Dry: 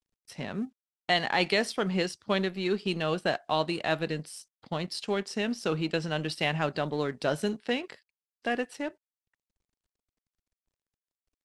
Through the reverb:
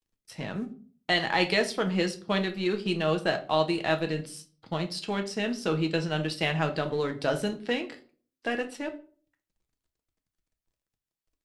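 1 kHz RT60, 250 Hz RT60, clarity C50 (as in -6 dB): 0.40 s, 0.60 s, 14.0 dB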